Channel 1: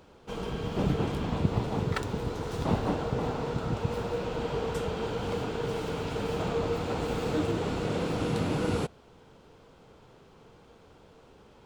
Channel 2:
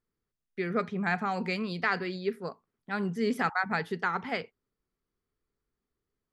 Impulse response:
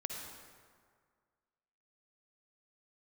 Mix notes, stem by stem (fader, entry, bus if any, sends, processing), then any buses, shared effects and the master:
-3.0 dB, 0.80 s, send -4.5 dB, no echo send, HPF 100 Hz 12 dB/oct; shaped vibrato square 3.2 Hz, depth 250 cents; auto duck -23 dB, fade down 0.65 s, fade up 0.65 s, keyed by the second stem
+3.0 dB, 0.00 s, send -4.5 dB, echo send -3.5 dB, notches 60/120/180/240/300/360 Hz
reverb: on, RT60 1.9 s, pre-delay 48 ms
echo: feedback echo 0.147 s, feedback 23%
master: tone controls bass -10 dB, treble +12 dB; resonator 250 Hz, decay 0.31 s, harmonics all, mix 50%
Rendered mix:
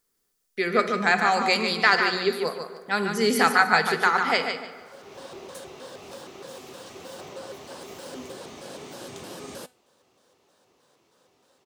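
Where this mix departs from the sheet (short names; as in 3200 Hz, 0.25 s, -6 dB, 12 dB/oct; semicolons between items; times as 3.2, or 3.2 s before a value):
stem 1: send off; stem 2 +3.0 dB -> +10.5 dB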